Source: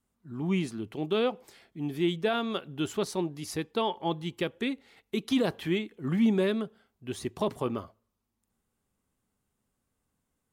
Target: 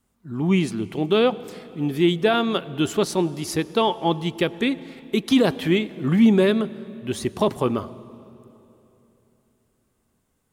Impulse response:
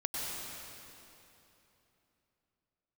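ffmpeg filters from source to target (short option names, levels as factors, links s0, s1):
-filter_complex "[0:a]asplit=2[s0][s1];[1:a]atrim=start_sample=2205,lowshelf=f=470:g=4.5[s2];[s1][s2]afir=irnorm=-1:irlink=0,volume=0.075[s3];[s0][s3]amix=inputs=2:normalize=0,volume=2.51"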